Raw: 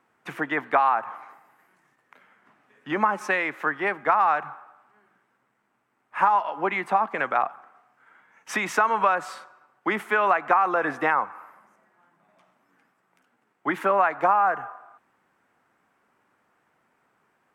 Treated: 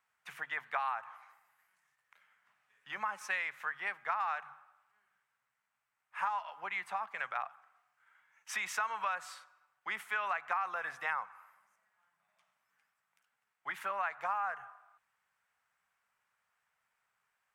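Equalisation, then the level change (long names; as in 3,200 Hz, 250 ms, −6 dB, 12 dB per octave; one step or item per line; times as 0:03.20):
guitar amp tone stack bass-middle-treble 10-0-10
mains-hum notches 50/100/150 Hz
−5.0 dB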